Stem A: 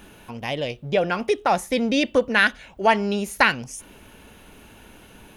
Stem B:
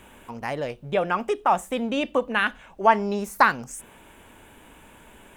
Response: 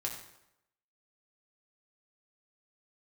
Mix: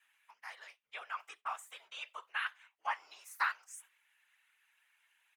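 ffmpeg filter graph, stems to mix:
-filter_complex "[0:a]acompressor=threshold=-34dB:ratio=2,highpass=frequency=1900:width_type=q:width=5,asplit=2[link_01][link_02];[link_02]adelay=7.9,afreqshift=-0.4[link_03];[link_01][link_03]amix=inputs=2:normalize=1,volume=-14dB[link_04];[1:a]highpass=frequency=1100:width=0.5412,highpass=frequency=1100:width=1.3066,agate=range=-14dB:threshold=-45dB:ratio=16:detection=peak,volume=-2dB[link_05];[link_04][link_05]amix=inputs=2:normalize=0,flanger=delay=2.5:depth=3.6:regen=-80:speed=0.73:shape=triangular,afftfilt=real='hypot(re,im)*cos(2*PI*random(0))':imag='hypot(re,im)*sin(2*PI*random(1))':win_size=512:overlap=0.75"

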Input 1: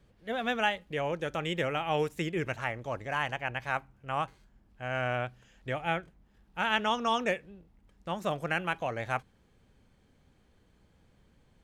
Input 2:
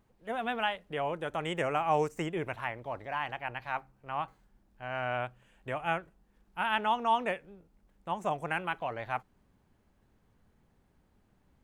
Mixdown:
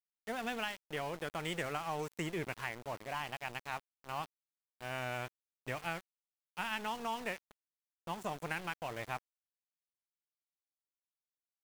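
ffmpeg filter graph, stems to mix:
ffmpeg -i stem1.wav -i stem2.wav -filter_complex "[0:a]afwtdn=0.00708,aexciter=amount=4.9:drive=5.9:freq=4600,aeval=exprs='(tanh(39.8*val(0)+0.15)-tanh(0.15))/39.8':channel_layout=same,volume=-12dB[link_01];[1:a]highshelf=frequency=2800:gain=8.5,acompressor=threshold=-30dB:ratio=4,volume=-4dB[link_02];[link_01][link_02]amix=inputs=2:normalize=0,aeval=exprs='val(0)*gte(abs(val(0)),0.00596)':channel_layout=same" out.wav

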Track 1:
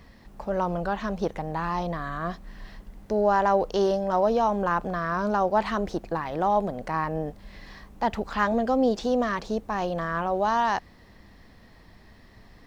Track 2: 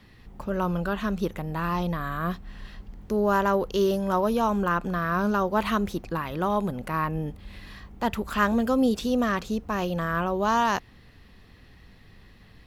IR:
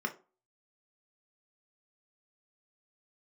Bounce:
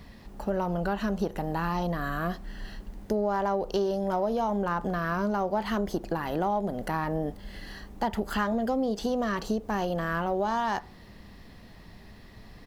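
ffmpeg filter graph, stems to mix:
-filter_complex "[0:a]volume=2dB,asplit=3[link_01][link_02][link_03];[link_02]volume=-15dB[link_04];[1:a]highpass=frequency=150:width=0.5412,highpass=frequency=150:width=1.3066,highshelf=frequency=4900:gain=8,asoftclip=type=tanh:threshold=-22.5dB,adelay=0.3,volume=-4.5dB[link_05];[link_03]apad=whole_len=558640[link_06];[link_05][link_06]sidechaincompress=threshold=-26dB:ratio=8:attack=46:release=306[link_07];[2:a]atrim=start_sample=2205[link_08];[link_04][link_08]afir=irnorm=-1:irlink=0[link_09];[link_01][link_07][link_09]amix=inputs=3:normalize=0,acompressor=threshold=-24dB:ratio=6"

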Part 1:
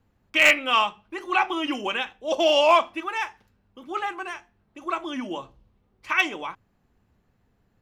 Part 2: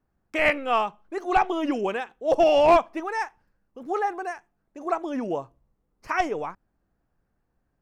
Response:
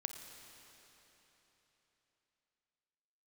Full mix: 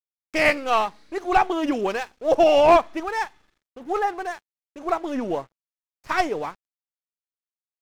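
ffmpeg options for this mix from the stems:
-filter_complex "[0:a]aeval=exprs='abs(val(0))':channel_layout=same,equalizer=frequency=6600:width=1.5:gain=3.5,volume=-8.5dB,asplit=2[link_01][link_02];[link_02]volume=-17.5dB[link_03];[1:a]volume=2.5dB,asplit=2[link_04][link_05];[link_05]apad=whole_len=344667[link_06];[link_01][link_06]sidechaincompress=threshold=-25dB:ratio=8:attack=46:release=329[link_07];[2:a]atrim=start_sample=2205[link_08];[link_03][link_08]afir=irnorm=-1:irlink=0[link_09];[link_07][link_04][link_09]amix=inputs=3:normalize=0,aeval=exprs='sgn(val(0))*max(abs(val(0))-0.00398,0)':channel_layout=same"

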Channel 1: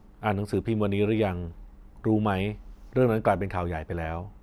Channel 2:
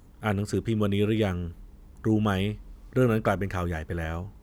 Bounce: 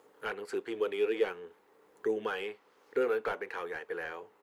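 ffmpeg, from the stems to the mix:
ffmpeg -i stem1.wav -i stem2.wav -filter_complex "[0:a]highpass=1100,asplit=2[link_01][link_02];[link_02]highpass=frequency=720:poles=1,volume=16dB,asoftclip=type=tanh:threshold=-16dB[link_03];[link_01][link_03]amix=inputs=2:normalize=0,lowpass=frequency=1700:poles=1,volume=-6dB,volume=-7dB,asplit=2[link_04][link_05];[1:a]flanger=delay=6.2:depth=6.8:regen=-63:speed=0.52:shape=triangular,highpass=frequency=460:width_type=q:width=4.9,volume=-1,adelay=0.5,volume=-1.5dB[link_06];[link_05]apad=whole_len=195289[link_07];[link_06][link_07]sidechaincompress=threshold=-45dB:ratio=4:attack=48:release=907[link_08];[link_04][link_08]amix=inputs=2:normalize=0,bandreject=frequency=5700:width=30" out.wav

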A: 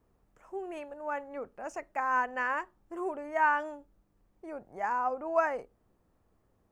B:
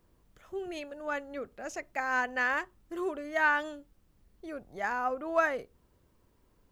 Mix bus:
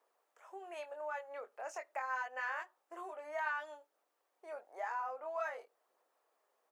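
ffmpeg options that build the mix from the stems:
ffmpeg -i stem1.wav -i stem2.wav -filter_complex "[0:a]aphaser=in_gain=1:out_gain=1:delay=5:decay=0.24:speed=1:type=sinusoidal,acompressor=threshold=-37dB:ratio=6,volume=-1dB[link_01];[1:a]adelay=23,volume=-14dB[link_02];[link_01][link_02]amix=inputs=2:normalize=0,highpass=frequency=530:width=0.5412,highpass=frequency=530:width=1.3066" out.wav

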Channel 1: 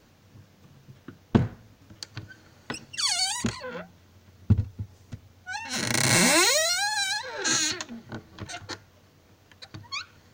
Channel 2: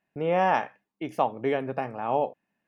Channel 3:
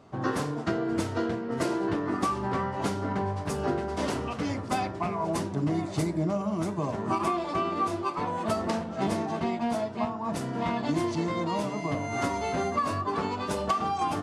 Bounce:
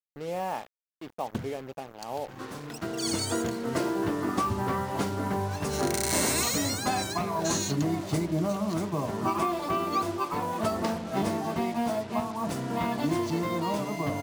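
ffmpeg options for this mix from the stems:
ffmpeg -i stem1.wav -i stem2.wav -i stem3.wav -filter_complex "[0:a]aemphasis=mode=production:type=50kf,bandreject=frequency=60:width_type=h:width=6,bandreject=frequency=120:width_type=h:width=6,bandreject=frequency=180:width_type=h:width=6,volume=-13dB[link_01];[1:a]equalizer=frequency=1700:width_type=o:width=0.91:gain=-6.5,volume=-8.5dB,asplit=2[link_02][link_03];[2:a]adelay=2150,volume=0dB[link_04];[link_03]apad=whole_len=722127[link_05];[link_04][link_05]sidechaincompress=threshold=-41dB:ratio=16:attack=16:release=1210[link_06];[link_01][link_02][link_06]amix=inputs=3:normalize=0,acrusher=bits=6:mix=0:aa=0.5" out.wav

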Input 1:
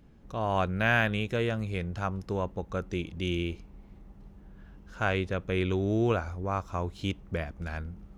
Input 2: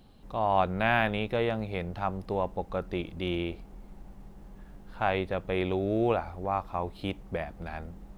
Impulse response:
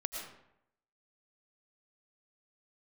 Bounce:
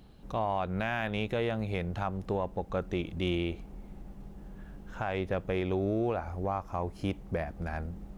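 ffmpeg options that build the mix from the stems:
-filter_complex "[0:a]acompressor=threshold=-38dB:ratio=2,asoftclip=type=tanh:threshold=-29.5dB,volume=-2dB[link_01];[1:a]volume=-1.5dB[link_02];[link_01][link_02]amix=inputs=2:normalize=0,alimiter=limit=-21dB:level=0:latency=1:release=225"

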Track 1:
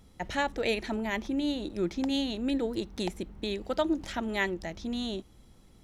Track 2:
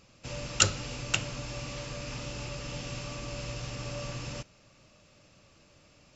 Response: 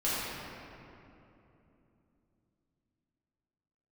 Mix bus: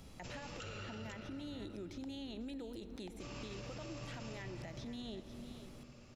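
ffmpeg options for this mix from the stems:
-filter_complex "[0:a]acompressor=threshold=-38dB:ratio=6,volume=1.5dB,asplit=4[link_01][link_02][link_03][link_04];[link_02]volume=-24dB[link_05];[link_03]volume=-17dB[link_06];[1:a]volume=-3.5dB,asplit=3[link_07][link_08][link_09];[link_07]atrim=end=0.74,asetpts=PTS-STARTPTS,afade=type=out:start_time=0.736:duration=0.004:curve=hsin[link_10];[link_08]atrim=start=0.74:end=3.2,asetpts=PTS-STARTPTS,volume=0[link_11];[link_09]atrim=start=3.2,asetpts=PTS-STARTPTS,afade=type=in:duration=0.004:curve=hsin[link_12];[link_10][link_11][link_12]concat=n=3:v=0:a=1,asplit=3[link_13][link_14][link_15];[link_14]volume=-10dB[link_16];[link_15]volume=-16dB[link_17];[link_04]apad=whole_len=271462[link_18];[link_13][link_18]sidechaingate=range=-7dB:threshold=-42dB:ratio=16:detection=peak[link_19];[2:a]atrim=start_sample=2205[link_20];[link_05][link_16]amix=inputs=2:normalize=0[link_21];[link_21][link_20]afir=irnorm=-1:irlink=0[link_22];[link_06][link_17]amix=inputs=2:normalize=0,aecho=0:1:496:1[link_23];[link_01][link_19][link_22][link_23]amix=inputs=4:normalize=0,acrossover=split=97|3800[link_24][link_25][link_26];[link_24]acompressor=threshold=-54dB:ratio=4[link_27];[link_25]acompressor=threshold=-43dB:ratio=4[link_28];[link_26]acompressor=threshold=-59dB:ratio=4[link_29];[link_27][link_28][link_29]amix=inputs=3:normalize=0,alimiter=level_in=13.5dB:limit=-24dB:level=0:latency=1:release=26,volume=-13.5dB"

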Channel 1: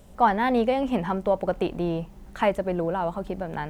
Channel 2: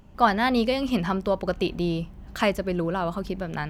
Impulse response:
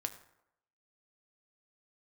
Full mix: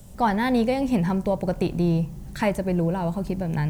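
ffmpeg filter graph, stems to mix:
-filter_complex "[0:a]bass=frequency=250:gain=6,treble=frequency=4000:gain=12,volume=-5.5dB,asplit=2[link_01][link_02];[link_02]volume=-6dB[link_03];[1:a]acompressor=threshold=-28dB:ratio=6,volume=-4.5dB[link_04];[2:a]atrim=start_sample=2205[link_05];[link_03][link_05]afir=irnorm=-1:irlink=0[link_06];[link_01][link_04][link_06]amix=inputs=3:normalize=0,equalizer=frequency=140:width_type=o:width=0.44:gain=10"

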